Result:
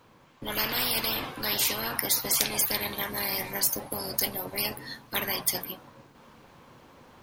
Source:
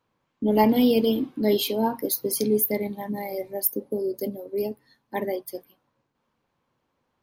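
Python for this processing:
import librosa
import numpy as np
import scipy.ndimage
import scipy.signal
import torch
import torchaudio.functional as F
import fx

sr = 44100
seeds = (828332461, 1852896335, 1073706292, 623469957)

p1 = fx.dynamic_eq(x, sr, hz=1800.0, q=1.1, threshold_db=-46.0, ratio=4.0, max_db=5)
p2 = fx.rider(p1, sr, range_db=10, speed_s=2.0)
p3 = p1 + (p2 * 10.0 ** (0.0 / 20.0))
p4 = fx.spectral_comp(p3, sr, ratio=10.0)
y = p4 * 10.0 ** (-1.5 / 20.0)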